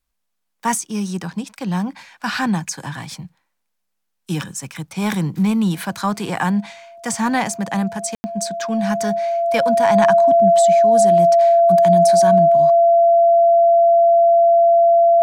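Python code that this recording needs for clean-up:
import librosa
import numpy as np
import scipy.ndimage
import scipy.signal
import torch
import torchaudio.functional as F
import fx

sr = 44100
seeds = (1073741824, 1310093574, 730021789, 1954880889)

y = fx.notch(x, sr, hz=680.0, q=30.0)
y = fx.fix_ambience(y, sr, seeds[0], print_start_s=0.0, print_end_s=0.5, start_s=8.15, end_s=8.24)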